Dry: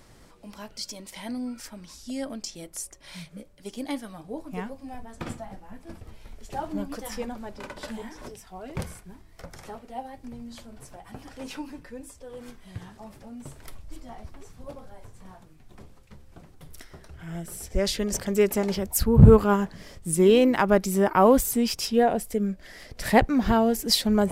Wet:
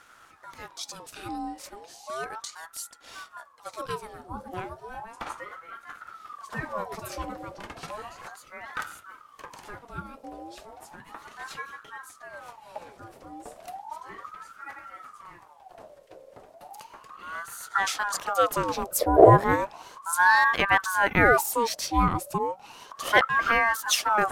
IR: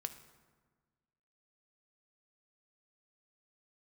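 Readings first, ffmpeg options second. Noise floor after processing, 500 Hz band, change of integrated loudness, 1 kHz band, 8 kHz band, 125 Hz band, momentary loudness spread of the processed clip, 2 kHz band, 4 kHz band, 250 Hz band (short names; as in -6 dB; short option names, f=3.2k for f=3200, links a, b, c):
-54 dBFS, -3.0 dB, -0.5 dB, +4.5 dB, -1.0 dB, -7.5 dB, 23 LU, +10.5 dB, -2.0 dB, -9.0 dB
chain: -af "aeval=exprs='val(0)*sin(2*PI*960*n/s+960*0.45/0.34*sin(2*PI*0.34*n/s))':c=same,volume=1dB"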